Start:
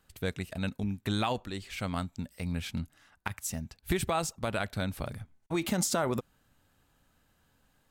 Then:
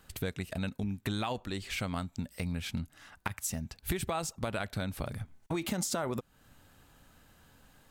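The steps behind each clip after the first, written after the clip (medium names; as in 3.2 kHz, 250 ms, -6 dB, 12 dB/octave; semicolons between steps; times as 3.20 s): compression 3:1, threshold -43 dBFS, peak gain reduction 14 dB; trim +8.5 dB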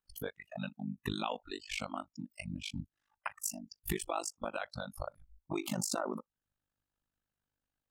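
spectral noise reduction 29 dB; AM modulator 50 Hz, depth 95%; trim +2.5 dB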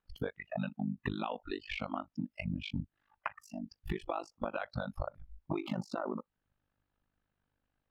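compression, threshold -40 dBFS, peak gain reduction 10.5 dB; distance through air 330 m; trim +9 dB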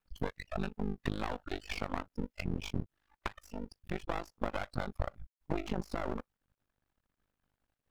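half-wave rectifier; trim +4 dB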